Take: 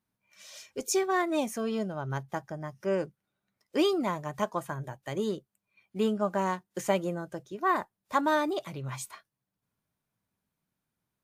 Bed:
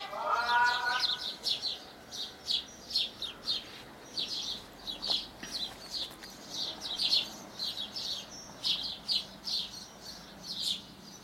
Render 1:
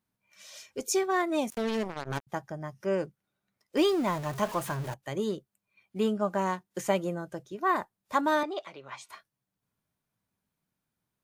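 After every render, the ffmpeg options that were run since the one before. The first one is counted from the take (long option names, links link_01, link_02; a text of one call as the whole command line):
ffmpeg -i in.wav -filter_complex "[0:a]asettb=1/sr,asplit=3[link_01][link_02][link_03];[link_01]atrim=end=1.504[link_04];[link_02]atrim=start=1.5:end=2.27,asetpts=PTS-STARTPTS,afade=type=in:duration=0.004:curve=qsin,afade=type=out:start_time=0.766:duration=0.004:curve=qsin,acrusher=bits=4:mix=0:aa=0.5[link_05];[link_03]atrim=start=2.266[link_06];[link_04][link_05]acrossfade=duration=0.004:curve1=hsin:curve2=qsin[link_07];[link_07][link_06]acrossfade=duration=0.004:curve1=qsin:curve2=hsin,asettb=1/sr,asplit=3[link_08][link_09][link_10];[link_08]atrim=end=3.774[link_11];[link_09]atrim=start=3.77:end=4.94,asetpts=PTS-STARTPTS,afade=type=in:duration=0.004:curve=qsin,afade=type=out:start_time=1.166:duration=0.004:curve=qsin,aeval=exprs='val(0)+0.5*0.0168*sgn(val(0))':channel_layout=same[link_12];[link_10]atrim=start=4.936[link_13];[link_11][link_12]acrossfade=duration=0.004:curve1=hsin:curve2=qsin[link_14];[link_14][link_13]acrossfade=duration=0.004:curve1=qsin:curve2=hsin,asettb=1/sr,asplit=3[link_15][link_16][link_17];[link_15]atrim=end=8.434[link_18];[link_16]atrim=start=8.43:end=9.09,asetpts=PTS-STARTPTS,afade=type=in:duration=0.004:curve=qsin,afade=type=out:start_time=0.656:duration=0.004:curve=qsin,highpass=450,lowpass=4300[link_19];[link_17]atrim=start=9.086[link_20];[link_18][link_19]acrossfade=duration=0.004:curve1=hsin:curve2=qsin[link_21];[link_21][link_20]acrossfade=duration=0.004:curve1=qsin:curve2=hsin" out.wav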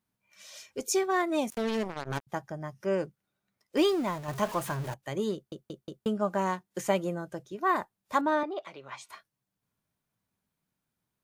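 ffmpeg -i in.wav -filter_complex "[0:a]asettb=1/sr,asplit=3[link_01][link_02][link_03];[link_01]atrim=end=8.214[link_04];[link_02]atrim=start=8.21:end=8.65,asetpts=PTS-STARTPTS,afade=type=in:duration=0.004:curve=qsin,afade=type=out:start_time=0.436:duration=0.004:curve=qsin,lowpass=frequency=1700:poles=1[link_05];[link_03]atrim=start=8.646[link_06];[link_04][link_05]acrossfade=duration=0.004:curve1=hsin:curve2=qsin[link_07];[link_07][link_06]acrossfade=duration=0.004:curve1=qsin:curve2=hsin,asplit=6[link_08][link_09][link_10][link_11][link_12][link_13];[link_08]atrim=end=4.28,asetpts=PTS-STARTPTS,afade=type=out:start_time=3.86:duration=0.42:silence=0.501187[link_14];[link_09]atrim=start=4.28:end=5.522,asetpts=PTS-STARTPTS,afade=type=in:duration=0.004:curve=hsin:silence=0.501187[link_15];[link_10]atrim=start=5.338:end=5.522[link_16];[link_11]atrim=start=5.338:end=5.522[link_17];[link_12]atrim=start=5.338:end=5.522[link_18];[link_13]atrim=start=6.058[link_19];[link_14][link_15]concat=n=2:v=0:a=1[link_20];[link_20][link_16]acrossfade=duration=0.004:curve1=hsin:curve2=hsin[link_21];[link_21][link_17]acrossfade=duration=0.004:curve1=hsin:curve2=hsin[link_22];[link_22][link_18]acrossfade=duration=0.004:curve1=hsin:curve2=hsin[link_23];[link_23][link_19]acrossfade=duration=0.004:curve1=hsin:curve2=hsin" out.wav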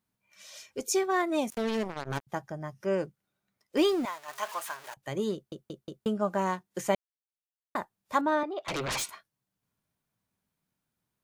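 ffmpeg -i in.wav -filter_complex "[0:a]asettb=1/sr,asplit=3[link_01][link_02][link_03];[link_01]atrim=end=4.054[link_04];[link_02]atrim=start=4.05:end=4.97,asetpts=PTS-STARTPTS,afade=type=in:duration=0.004:curve=qsin,afade=type=out:start_time=0.916:duration=0.004:curve=qsin,highpass=940[link_05];[link_03]atrim=start=4.966[link_06];[link_04][link_05]acrossfade=duration=0.004:curve1=hsin:curve2=qsin[link_07];[link_07][link_06]acrossfade=duration=0.004:curve1=qsin:curve2=hsin,asettb=1/sr,asplit=3[link_08][link_09][link_10];[link_08]atrim=end=8.684[link_11];[link_09]atrim=start=8.68:end=9.1,asetpts=PTS-STARTPTS,afade=type=in:duration=0.004:curve=qsin,afade=type=out:start_time=0.416:duration=0.004:curve=qsin,aeval=exprs='0.0376*sin(PI/2*7.08*val(0)/0.0376)':channel_layout=same[link_12];[link_10]atrim=start=9.096[link_13];[link_11][link_12]acrossfade=duration=0.004:curve1=hsin:curve2=qsin[link_14];[link_14][link_13]acrossfade=duration=0.004:curve1=qsin:curve2=hsin,asplit=3[link_15][link_16][link_17];[link_15]atrim=end=6.95,asetpts=PTS-STARTPTS,afade=type=out:start_time=6.946:duration=0.004:curve=hsin[link_18];[link_16]atrim=start=6.95:end=7.75,asetpts=PTS-STARTPTS,volume=0[link_19];[link_17]atrim=start=7.75,asetpts=PTS-STARTPTS,afade=type=in:duration=0.004:curve=hsin[link_20];[link_18][link_19][link_20]concat=n=3:v=0:a=1" out.wav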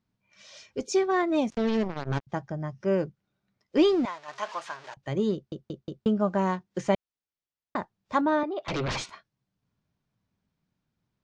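ffmpeg -i in.wav -af "lowpass=frequency=6000:width=0.5412,lowpass=frequency=6000:width=1.3066,lowshelf=frequency=340:gain=8.5" out.wav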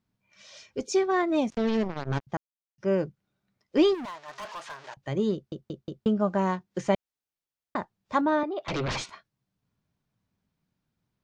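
ffmpeg -i in.wav -filter_complex "[0:a]asplit=3[link_01][link_02][link_03];[link_01]afade=type=out:start_time=3.93:duration=0.02[link_04];[link_02]asoftclip=type=hard:threshold=-34.5dB,afade=type=in:start_time=3.93:duration=0.02,afade=type=out:start_time=4.77:duration=0.02[link_05];[link_03]afade=type=in:start_time=4.77:duration=0.02[link_06];[link_04][link_05][link_06]amix=inputs=3:normalize=0,asplit=3[link_07][link_08][link_09];[link_07]atrim=end=2.37,asetpts=PTS-STARTPTS,afade=type=out:start_time=2.366:duration=0.004:curve=hsin[link_10];[link_08]atrim=start=2.37:end=2.78,asetpts=PTS-STARTPTS,volume=0[link_11];[link_09]atrim=start=2.78,asetpts=PTS-STARTPTS,afade=type=in:duration=0.004:curve=hsin[link_12];[link_10][link_11][link_12]concat=n=3:v=0:a=1" out.wav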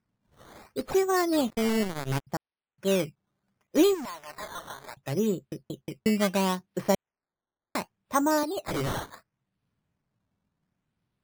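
ffmpeg -i in.wav -af "acrusher=samples=12:mix=1:aa=0.000001:lfo=1:lforange=12:lforate=0.7" out.wav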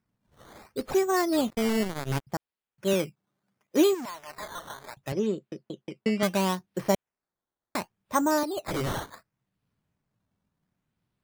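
ffmpeg -i in.wav -filter_complex "[0:a]asettb=1/sr,asplit=3[link_01][link_02][link_03];[link_01]atrim=end=2.934[link_04];[link_02]atrim=start=2.93:end=4.09,asetpts=PTS-STARTPTS,afade=type=in:duration=0.004:curve=qsin,afade=type=out:start_time=1.156:duration=0.004:curve=qsin,highpass=130[link_05];[link_03]atrim=start=4.086[link_06];[link_04][link_05]acrossfade=duration=0.004:curve1=hsin:curve2=qsin[link_07];[link_07][link_06]acrossfade=duration=0.004:curve1=qsin:curve2=hsin,asettb=1/sr,asplit=3[link_08][link_09][link_10];[link_08]atrim=end=5.124[link_11];[link_09]atrim=start=5.12:end=6.23,asetpts=PTS-STARTPTS,afade=type=in:duration=0.004:curve=qsin,afade=type=out:start_time=1.106:duration=0.004:curve=qsin,highpass=190,lowpass=4600[link_12];[link_10]atrim=start=6.226[link_13];[link_11][link_12]acrossfade=duration=0.004:curve1=hsin:curve2=qsin[link_14];[link_14][link_13]acrossfade=duration=0.004:curve1=qsin:curve2=hsin" out.wav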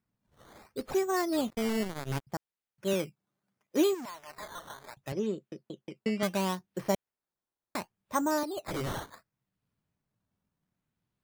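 ffmpeg -i in.wav -af "volume=-4.5dB" out.wav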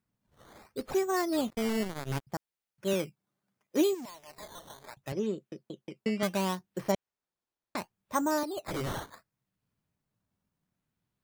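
ffmpeg -i in.wav -filter_complex "[0:a]asettb=1/sr,asplit=3[link_01][link_02][link_03];[link_01]atrim=end=3.814[link_04];[link_02]atrim=start=3.81:end=4.83,asetpts=PTS-STARTPTS,afade=type=in:duration=0.004:curve=qsin,afade=type=out:start_time=1.016:duration=0.004:curve=qsin,equalizer=frequency=1400:width=1.3:gain=-10[link_05];[link_03]atrim=start=4.826[link_06];[link_04][link_05]acrossfade=duration=0.004:curve1=hsin:curve2=qsin[link_07];[link_07][link_06]acrossfade=duration=0.004:curve1=qsin:curve2=hsin,asplit=3[link_08][link_09][link_10];[link_08]afade=type=out:start_time=6.91:duration=0.02[link_11];[link_09]lowpass=6400,afade=type=in:start_time=6.91:duration=0.02,afade=type=out:start_time=7.76:duration=0.02[link_12];[link_10]afade=type=in:start_time=7.76:duration=0.02[link_13];[link_11][link_12][link_13]amix=inputs=3:normalize=0" out.wav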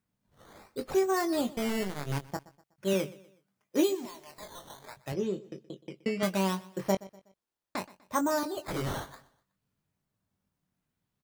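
ffmpeg -i in.wav -filter_complex "[0:a]asplit=2[link_01][link_02];[link_02]adelay=21,volume=-7.5dB[link_03];[link_01][link_03]amix=inputs=2:normalize=0,aecho=1:1:123|246|369:0.1|0.039|0.0152" out.wav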